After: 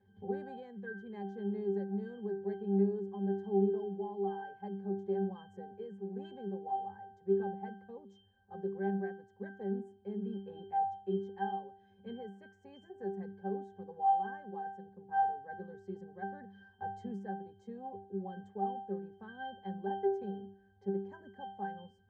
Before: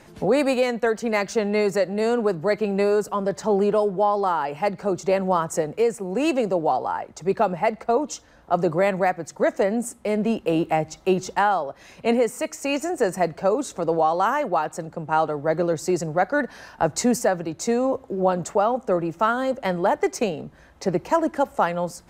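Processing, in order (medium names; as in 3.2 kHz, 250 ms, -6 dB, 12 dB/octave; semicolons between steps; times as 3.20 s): band-stop 910 Hz, Q 9.7; pitch-class resonator G, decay 0.48 s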